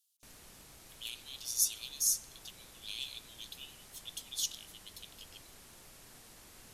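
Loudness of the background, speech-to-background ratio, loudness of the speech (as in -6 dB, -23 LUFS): -54.0 LUFS, 19.0 dB, -35.0 LUFS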